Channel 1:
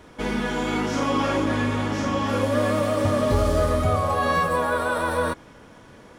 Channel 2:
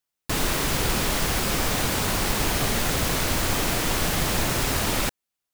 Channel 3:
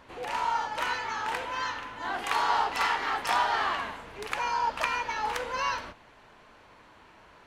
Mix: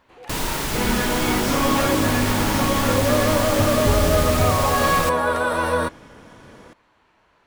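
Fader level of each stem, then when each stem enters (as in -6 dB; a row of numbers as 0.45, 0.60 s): +2.5, -1.0, -6.0 dB; 0.55, 0.00, 0.00 s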